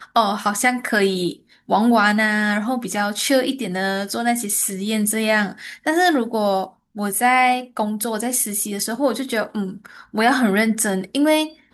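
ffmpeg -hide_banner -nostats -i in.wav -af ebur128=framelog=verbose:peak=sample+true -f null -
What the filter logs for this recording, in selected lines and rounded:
Integrated loudness:
  I:         -19.6 LUFS
  Threshold: -29.8 LUFS
Loudness range:
  LRA:         1.7 LU
  Threshold: -39.9 LUFS
  LRA low:   -20.7 LUFS
  LRA high:  -19.0 LUFS
Sample peak:
  Peak:       -3.8 dBFS
True peak:
  Peak:       -3.7 dBFS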